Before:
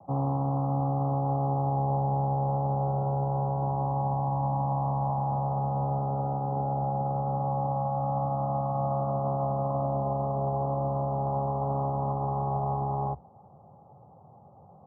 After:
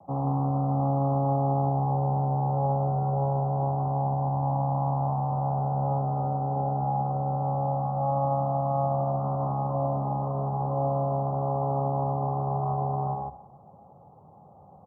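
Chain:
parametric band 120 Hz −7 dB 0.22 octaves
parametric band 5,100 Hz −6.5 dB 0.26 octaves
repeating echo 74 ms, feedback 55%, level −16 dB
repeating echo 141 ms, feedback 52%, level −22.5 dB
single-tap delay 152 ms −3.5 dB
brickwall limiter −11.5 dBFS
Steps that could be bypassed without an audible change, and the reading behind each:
parametric band 5,100 Hz: nothing at its input above 1,100 Hz
brickwall limiter −11.5 dBFS: peak of its input −15.0 dBFS

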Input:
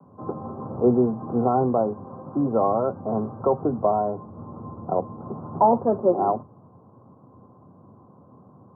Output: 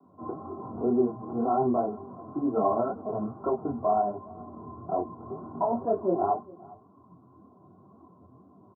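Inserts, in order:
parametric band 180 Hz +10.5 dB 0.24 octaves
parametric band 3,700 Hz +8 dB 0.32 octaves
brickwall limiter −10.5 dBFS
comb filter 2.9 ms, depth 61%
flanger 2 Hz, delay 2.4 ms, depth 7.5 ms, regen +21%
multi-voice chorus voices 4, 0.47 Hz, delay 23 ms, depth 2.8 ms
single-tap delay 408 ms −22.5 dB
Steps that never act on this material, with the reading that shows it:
parametric band 3,700 Hz: nothing at its input above 1,400 Hz

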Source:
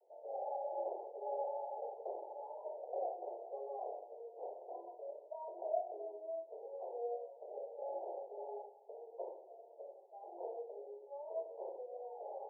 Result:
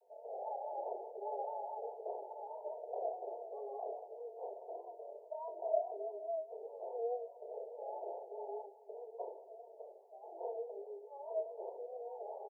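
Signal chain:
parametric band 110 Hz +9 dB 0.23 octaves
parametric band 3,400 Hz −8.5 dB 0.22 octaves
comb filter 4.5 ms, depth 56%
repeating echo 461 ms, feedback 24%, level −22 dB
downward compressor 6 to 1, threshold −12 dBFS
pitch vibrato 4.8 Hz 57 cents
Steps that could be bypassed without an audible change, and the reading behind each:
parametric band 110 Hz: nothing at its input below 320 Hz
parametric band 3,400 Hz: nothing at its input above 1,000 Hz
downward compressor, threshold −12 dBFS: peak of its input −22.5 dBFS

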